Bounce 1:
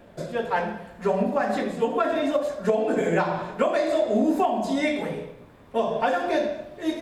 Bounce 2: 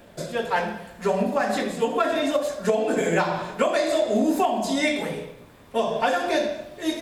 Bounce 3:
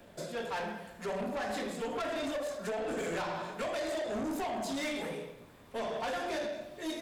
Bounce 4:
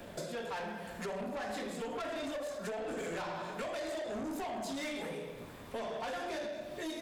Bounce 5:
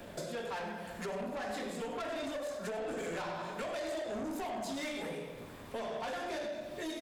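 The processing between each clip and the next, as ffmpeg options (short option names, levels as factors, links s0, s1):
-af "highshelf=f=2900:g=10.5"
-filter_complex "[0:a]acrossover=split=150|3100[s0][s1][s2];[s0]acompressor=threshold=0.002:ratio=6[s3];[s3][s1][s2]amix=inputs=3:normalize=0,asoftclip=type=tanh:threshold=0.0501,volume=0.501"
-af "acompressor=threshold=0.00501:ratio=5,volume=2.24"
-af "aecho=1:1:97:0.237"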